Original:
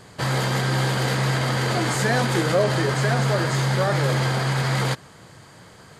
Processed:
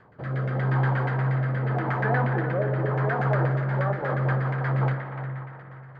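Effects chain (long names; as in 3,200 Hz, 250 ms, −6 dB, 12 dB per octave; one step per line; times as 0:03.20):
0:01.59–0:03.09: moving average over 4 samples
spring reverb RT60 3 s, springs 38/45 ms, chirp 55 ms, DRR 4.5 dB
rotating-speaker cabinet horn 0.85 Hz, later 5.5 Hz, at 0:03.36
auto-filter low-pass saw down 8.4 Hz 720–1,900 Hz
feedback echo with a band-pass in the loop 295 ms, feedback 52%, band-pass 1,600 Hz, level −9.5 dB
level −7 dB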